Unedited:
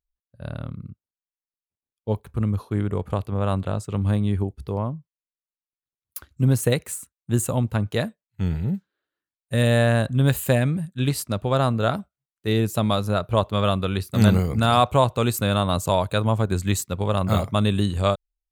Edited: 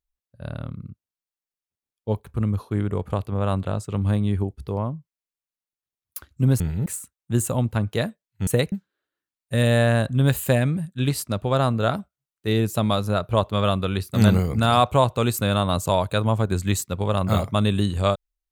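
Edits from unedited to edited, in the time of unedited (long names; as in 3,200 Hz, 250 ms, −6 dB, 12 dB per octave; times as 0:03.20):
0:06.60–0:06.85: swap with 0:08.46–0:08.72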